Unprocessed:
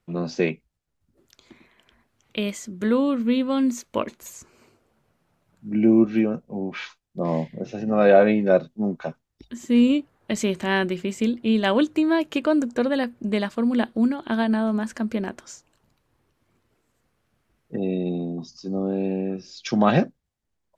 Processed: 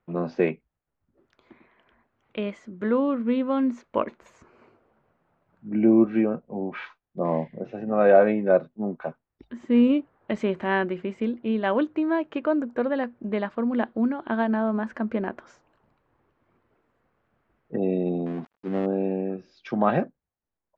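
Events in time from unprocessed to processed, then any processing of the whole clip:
18.26–18.86 s: dead-time distortion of 0.22 ms
whole clip: low-pass 1.6 kHz 12 dB/octave; bass shelf 270 Hz -9 dB; gain riding within 5 dB 2 s

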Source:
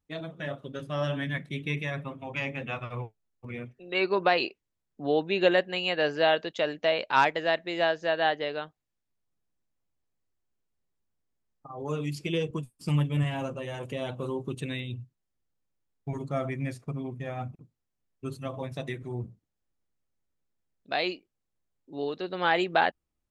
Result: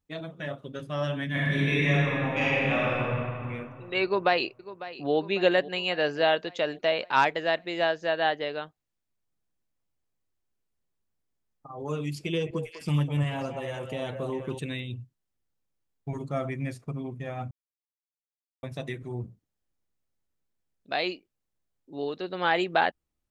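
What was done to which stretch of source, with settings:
1.27–3.00 s: reverb throw, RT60 2.5 s, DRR -8.5 dB
4.04–5.13 s: echo throw 550 ms, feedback 60%, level -15.5 dB
12.04–14.59 s: repeats whose band climbs or falls 200 ms, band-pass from 650 Hz, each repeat 1.4 oct, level -3 dB
17.51–18.63 s: mute

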